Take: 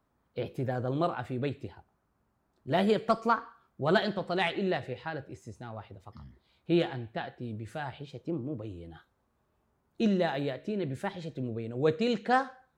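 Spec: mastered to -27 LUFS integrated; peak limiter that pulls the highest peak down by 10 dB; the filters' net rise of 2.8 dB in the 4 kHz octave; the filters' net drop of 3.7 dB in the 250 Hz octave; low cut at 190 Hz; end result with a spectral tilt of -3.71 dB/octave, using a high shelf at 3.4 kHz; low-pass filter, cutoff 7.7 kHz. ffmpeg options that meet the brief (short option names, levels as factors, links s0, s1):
-af "highpass=190,lowpass=7700,equalizer=f=250:t=o:g=-3,highshelf=f=3400:g=-6.5,equalizer=f=4000:t=o:g=8,volume=2.82,alimiter=limit=0.224:level=0:latency=1"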